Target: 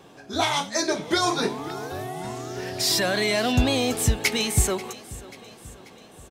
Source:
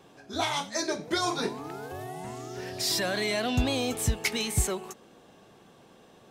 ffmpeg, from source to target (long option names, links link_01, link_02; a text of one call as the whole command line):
ffmpeg -i in.wav -af "aecho=1:1:537|1074|1611|2148|2685:0.112|0.0628|0.0352|0.0197|0.011,volume=5.5dB" out.wav